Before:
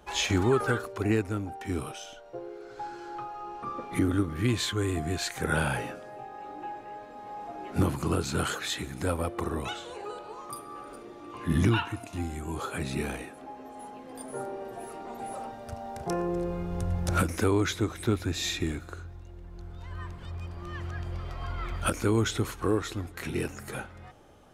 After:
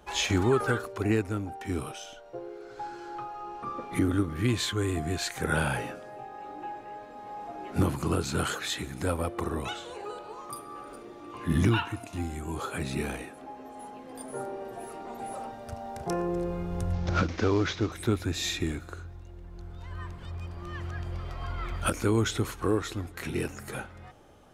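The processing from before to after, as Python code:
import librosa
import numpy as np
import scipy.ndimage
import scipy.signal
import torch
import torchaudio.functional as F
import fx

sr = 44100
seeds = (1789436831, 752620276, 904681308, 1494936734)

y = fx.quant_float(x, sr, bits=6, at=(9.78, 13.17))
y = fx.cvsd(y, sr, bps=32000, at=(16.93, 17.92))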